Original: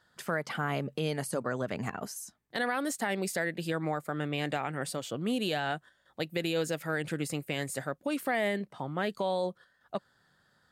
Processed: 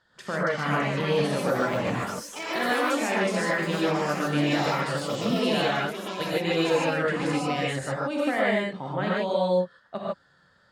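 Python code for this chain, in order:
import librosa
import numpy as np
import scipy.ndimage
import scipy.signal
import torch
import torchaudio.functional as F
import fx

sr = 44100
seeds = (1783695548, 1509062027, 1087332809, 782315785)

y = scipy.signal.sosfilt(scipy.signal.butter(2, 6100.0, 'lowpass', fs=sr, output='sos'), x)
y = fx.echo_pitch(y, sr, ms=449, semitones=5, count=3, db_per_echo=-6.0)
y = fx.rev_gated(y, sr, seeds[0], gate_ms=170, shape='rising', drr_db=-5.5)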